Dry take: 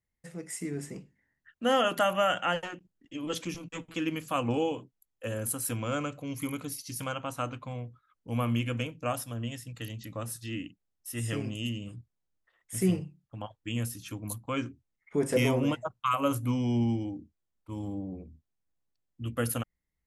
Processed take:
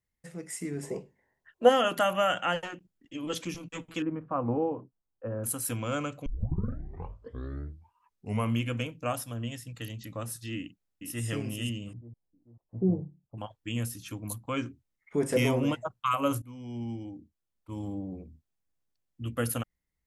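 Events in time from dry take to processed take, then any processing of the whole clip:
0.83–1.69 s: time-frequency box 350–1100 Hz +12 dB
4.02–5.44 s: low-pass 1.3 kHz 24 dB/octave
6.26 s: tape start 2.30 s
10.57–11.25 s: echo throw 440 ms, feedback 40%, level -5.5 dB
11.93–13.38 s: steep low-pass 880 Hz
16.42–17.80 s: fade in, from -21.5 dB

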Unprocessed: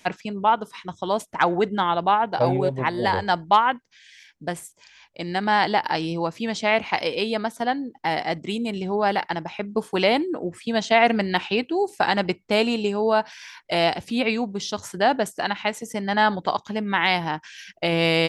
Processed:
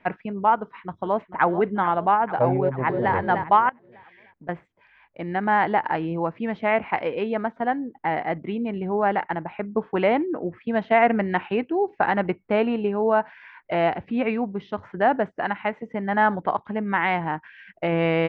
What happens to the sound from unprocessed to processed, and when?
0.57–1.45 s: echo throw 440 ms, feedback 60%, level -12.5 dB
2.59–3.13 s: echo throw 300 ms, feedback 30%, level -6 dB
3.69–4.49 s: compression, threshold -42 dBFS
whole clip: low-pass 2.1 kHz 24 dB/octave

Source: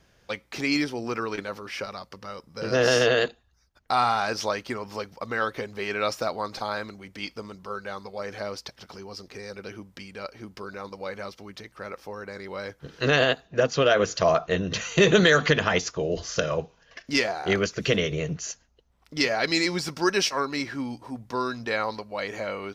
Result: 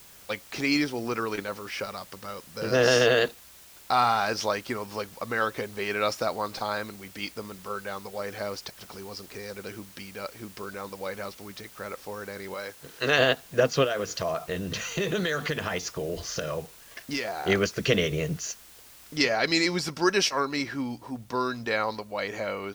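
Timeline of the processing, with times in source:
12.54–13.19 s: bass shelf 260 Hz -11.5 dB
13.84–17.38 s: compression 2.5:1, threshold -29 dBFS
19.17 s: noise floor step -51 dB -62 dB

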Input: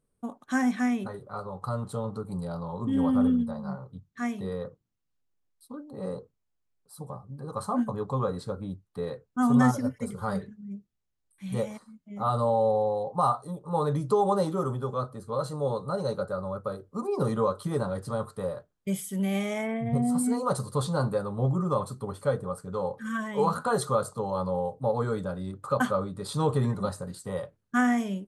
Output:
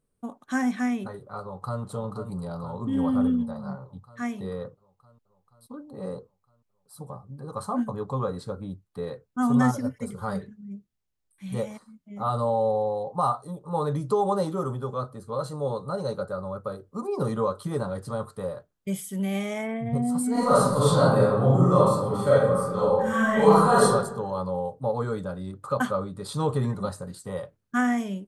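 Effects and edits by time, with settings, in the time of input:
1.41–1.82 s: echo throw 480 ms, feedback 70%, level -8.5 dB
20.31–23.82 s: reverb throw, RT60 0.93 s, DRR -9 dB

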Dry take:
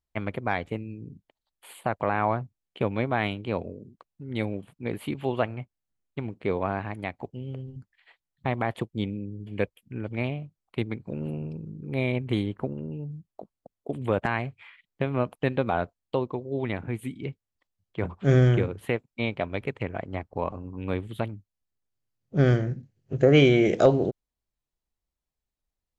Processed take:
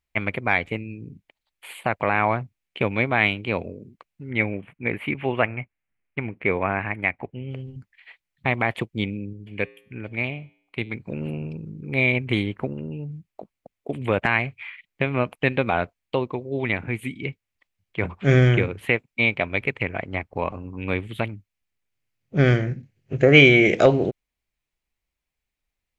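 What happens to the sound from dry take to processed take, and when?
4.31–7.51 s: resonant high shelf 3.2 kHz -12 dB, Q 1.5
9.33–10.94 s: feedback comb 58 Hz, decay 0.7 s, harmonics odd, mix 40%
whole clip: peaking EQ 2.3 kHz +11.5 dB 0.82 oct; trim +2.5 dB

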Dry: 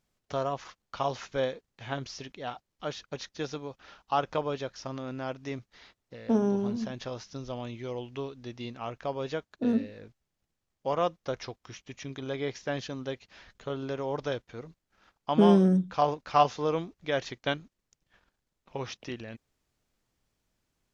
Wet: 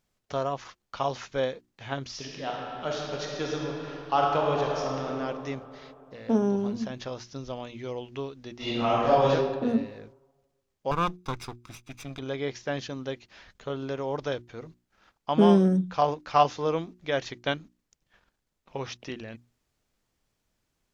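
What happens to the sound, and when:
2.06–5.07 s: reverb throw, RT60 2.9 s, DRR -2 dB
8.56–9.30 s: reverb throw, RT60 1.3 s, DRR -11.5 dB
10.91–12.19 s: comb filter that takes the minimum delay 0.82 ms
whole clip: hum notches 60/120/180/240/300/360 Hz; trim +1.5 dB

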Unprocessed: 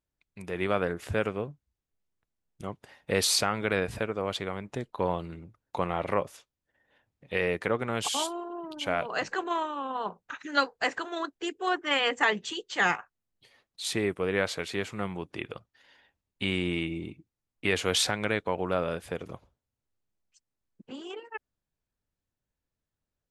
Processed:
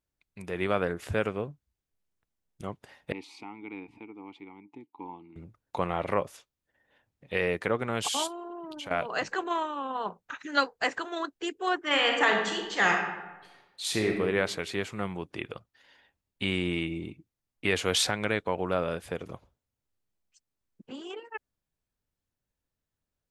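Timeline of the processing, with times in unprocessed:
3.12–5.36 s: vowel filter u
8.27–8.91 s: compression, threshold -36 dBFS
11.80–14.20 s: reverb throw, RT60 1.1 s, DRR 1.5 dB

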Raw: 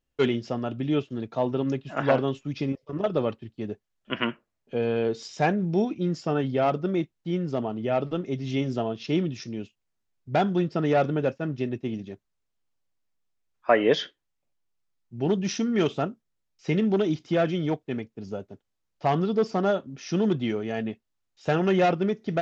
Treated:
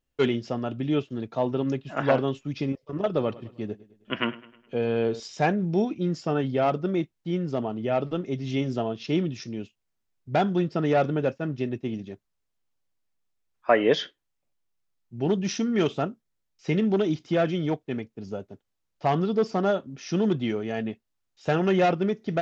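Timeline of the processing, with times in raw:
3.05–5.20 s: feedback delay 104 ms, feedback 49%, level -19 dB

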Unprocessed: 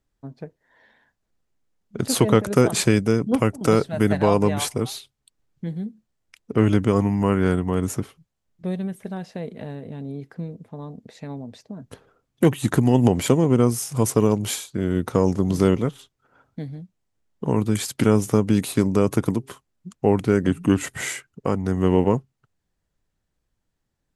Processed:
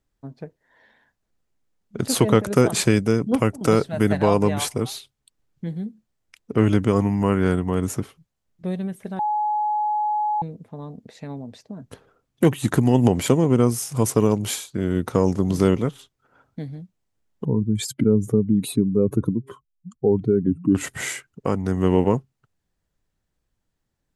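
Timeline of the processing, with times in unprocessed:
9.19–10.42 s: bleep 844 Hz -19.5 dBFS
17.45–20.75 s: spectral contrast enhancement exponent 2.1

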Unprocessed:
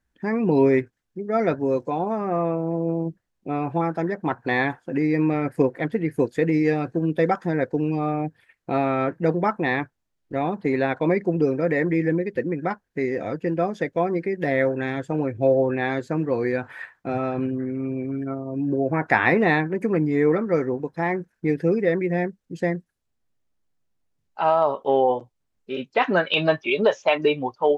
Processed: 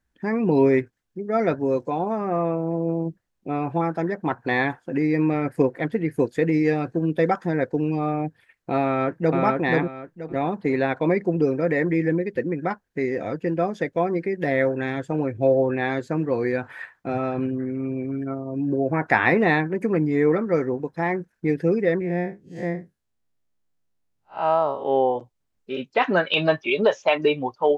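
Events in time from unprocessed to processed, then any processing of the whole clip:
8.84–9.39 s: echo throw 480 ms, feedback 25%, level -1.5 dB
22.00–25.16 s: spectral blur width 118 ms

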